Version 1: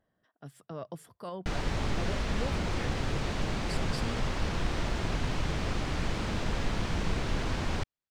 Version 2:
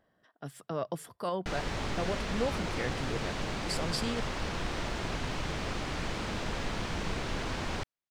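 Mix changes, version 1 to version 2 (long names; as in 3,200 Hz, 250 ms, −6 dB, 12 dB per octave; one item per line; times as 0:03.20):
speech +7.5 dB
master: add low-shelf EQ 210 Hz −6.5 dB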